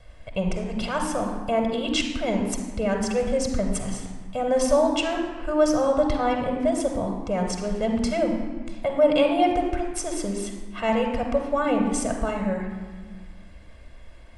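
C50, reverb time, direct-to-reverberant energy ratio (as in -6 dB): 5.0 dB, 1.4 s, 2.0 dB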